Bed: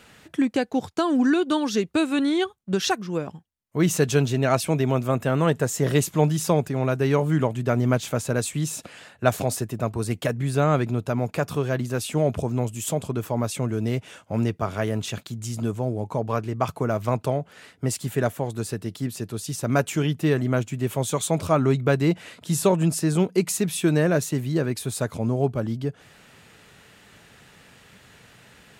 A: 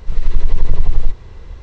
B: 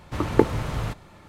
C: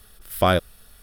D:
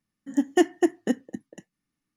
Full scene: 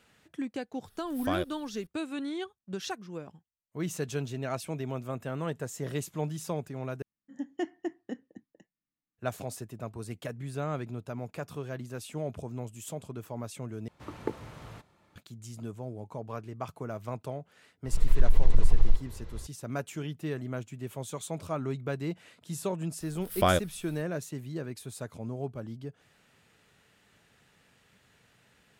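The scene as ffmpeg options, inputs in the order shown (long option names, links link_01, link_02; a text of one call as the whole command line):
ffmpeg -i bed.wav -i cue0.wav -i cue1.wav -i cue2.wav -i cue3.wav -filter_complex "[3:a]asplit=2[link_01][link_02];[0:a]volume=-13dB[link_03];[4:a]lowpass=4900[link_04];[2:a]highpass=frequency=120:poles=1[link_05];[link_03]asplit=3[link_06][link_07][link_08];[link_06]atrim=end=7.024[link_09];[link_04]atrim=end=2.16,asetpts=PTS-STARTPTS,volume=-13.5dB[link_10];[link_07]atrim=start=9.176:end=13.884[link_11];[link_05]atrim=end=1.28,asetpts=PTS-STARTPTS,volume=-15dB[link_12];[link_08]atrim=start=15.156[link_13];[link_01]atrim=end=1.02,asetpts=PTS-STARTPTS,volume=-13.5dB,afade=type=in:duration=0.004:curve=hsin,afade=type=out:start_time=1.016:duration=0.004:curve=hsin,adelay=850[link_14];[1:a]atrim=end=1.62,asetpts=PTS-STARTPTS,volume=-8dB,afade=type=in:duration=0.004:curve=hsin,afade=type=out:start_time=1.616:duration=0.004:curve=hsin,adelay=17850[link_15];[link_02]atrim=end=1.02,asetpts=PTS-STARTPTS,volume=-5.5dB,afade=type=in:duration=0.004:curve=hsin,afade=type=out:start_time=1.016:duration=0.004:curve=hsin,adelay=23000[link_16];[link_09][link_10]acrossfade=duration=0.004:curve1=hsin:curve2=hsin[link_17];[link_17][link_11]acrossfade=duration=0.004:curve1=hsin:curve2=hsin[link_18];[link_18][link_12]acrossfade=duration=0.004:curve1=hsin:curve2=hsin[link_19];[link_19][link_13]acrossfade=duration=0.004:curve1=hsin:curve2=hsin[link_20];[link_20][link_14][link_15][link_16]amix=inputs=4:normalize=0" out.wav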